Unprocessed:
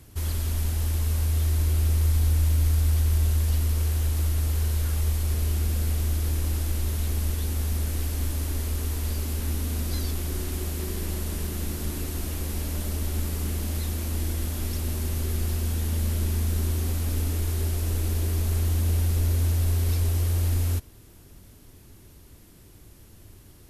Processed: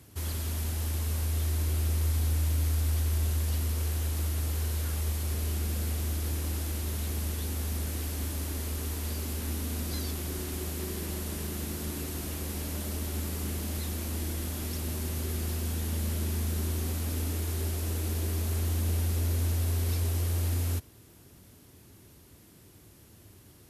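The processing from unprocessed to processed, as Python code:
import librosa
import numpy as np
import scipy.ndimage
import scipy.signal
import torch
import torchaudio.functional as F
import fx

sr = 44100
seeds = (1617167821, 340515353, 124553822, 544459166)

y = scipy.signal.sosfilt(scipy.signal.butter(2, 86.0, 'highpass', fs=sr, output='sos'), x)
y = F.gain(torch.from_numpy(y), -2.0).numpy()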